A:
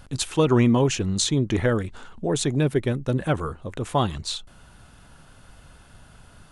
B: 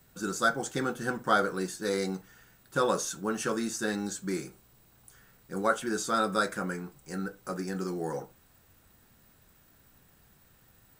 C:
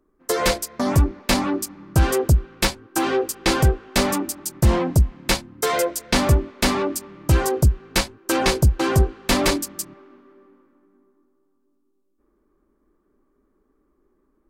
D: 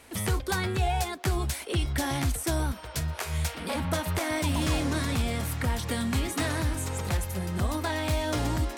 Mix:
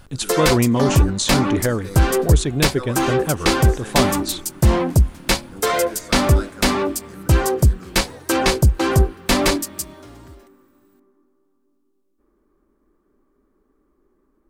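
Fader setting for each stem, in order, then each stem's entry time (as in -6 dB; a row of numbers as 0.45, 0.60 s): +1.0, -6.5, +2.0, -15.5 dB; 0.00, 0.00, 0.00, 1.70 s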